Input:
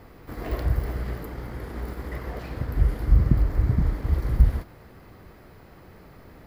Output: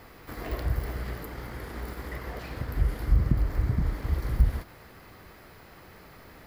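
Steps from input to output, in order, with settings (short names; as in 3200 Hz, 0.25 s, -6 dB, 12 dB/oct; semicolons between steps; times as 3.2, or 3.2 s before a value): mismatched tape noise reduction encoder only; gain -4.5 dB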